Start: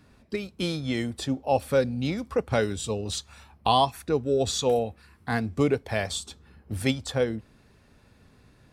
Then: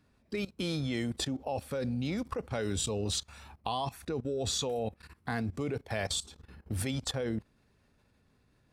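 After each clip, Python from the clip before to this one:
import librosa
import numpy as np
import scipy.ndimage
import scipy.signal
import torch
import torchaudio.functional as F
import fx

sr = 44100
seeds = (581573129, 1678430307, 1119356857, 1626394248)

y = fx.level_steps(x, sr, step_db=18)
y = F.gain(torch.from_numpy(y), 3.5).numpy()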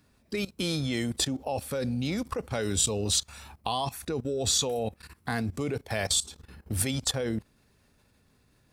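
y = fx.high_shelf(x, sr, hz=5200.0, db=9.5)
y = F.gain(torch.from_numpy(y), 3.0).numpy()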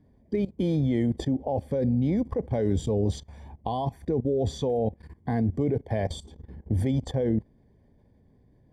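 y = np.convolve(x, np.full(33, 1.0 / 33))[:len(x)]
y = F.gain(torch.from_numpy(y), 6.5).numpy()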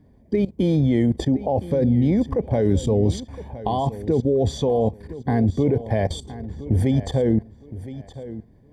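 y = fx.echo_feedback(x, sr, ms=1015, feedback_pct=25, wet_db=-15.0)
y = F.gain(torch.from_numpy(y), 6.0).numpy()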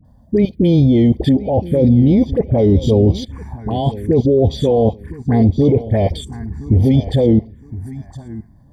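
y = fx.env_phaser(x, sr, low_hz=380.0, high_hz=1600.0, full_db=-16.5)
y = fx.dispersion(y, sr, late='highs', ms=49.0, hz=1000.0)
y = F.gain(torch.from_numpy(y), 7.5).numpy()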